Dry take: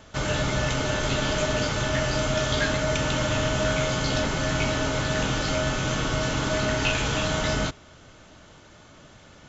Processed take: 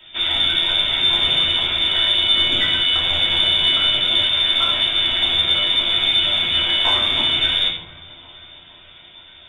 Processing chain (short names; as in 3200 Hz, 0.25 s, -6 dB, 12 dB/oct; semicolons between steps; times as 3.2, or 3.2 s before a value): low shelf 80 Hz +7 dB; inverted band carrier 3600 Hz; dark delay 0.46 s, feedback 66%, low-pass 1600 Hz, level -20 dB; reverb RT60 0.60 s, pre-delay 3 ms, DRR -4 dB; in parallel at -8.5 dB: soft clip -12 dBFS, distortion -16 dB; on the sum: resonator 85 Hz, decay 0.16 s, harmonics all, mix 80%